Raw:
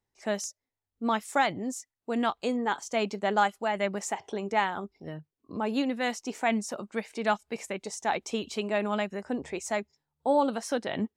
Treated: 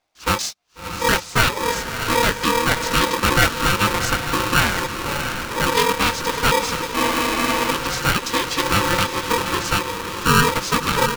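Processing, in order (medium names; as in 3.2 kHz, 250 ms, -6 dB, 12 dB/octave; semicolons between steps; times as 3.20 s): low-pass 5.3 kHz 24 dB/octave; treble shelf 3.1 kHz +10.5 dB; in parallel at -1 dB: peak limiter -18.5 dBFS, peak gain reduction 9.5 dB; on the sum: harmony voices -3 st -1 dB; on a send: echo that smears into a reverb 666 ms, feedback 57%, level -7 dB; on the sum: spectral freeze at 6.96 s, 0.75 s; polarity switched at an audio rate 710 Hz; trim +1.5 dB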